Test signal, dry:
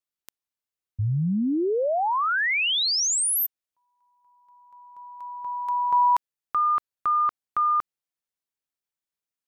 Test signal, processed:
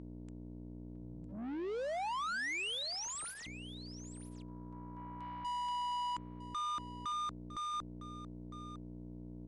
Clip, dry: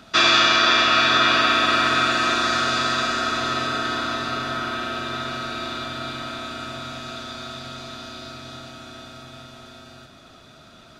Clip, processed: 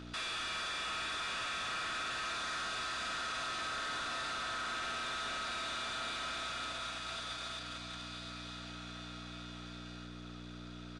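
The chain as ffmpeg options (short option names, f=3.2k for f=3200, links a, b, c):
-filter_complex "[0:a]highpass=f=1.2k:p=1,bandreject=f=7.4k:w=29,agate=range=-24dB:threshold=-39dB:ratio=16:release=35:detection=peak,acompressor=threshold=-28dB:ratio=6,aeval=exprs='val(0)+0.00282*(sin(2*PI*60*n/s)+sin(2*PI*2*60*n/s)/2+sin(2*PI*3*60*n/s)/3+sin(2*PI*4*60*n/s)/4+sin(2*PI*5*60*n/s)/5)':c=same,asoftclip=type=tanh:threshold=-37dB,asplit=2[a][b];[b]highpass=f=720:p=1,volume=29dB,asoftclip=type=tanh:threshold=-37dB[c];[a][c]amix=inputs=2:normalize=0,lowpass=f=4.2k:p=1,volume=-6dB,asplit=2[d][e];[e]aecho=0:1:956:0.2[f];[d][f]amix=inputs=2:normalize=0,aresample=22050,aresample=44100,volume=1dB"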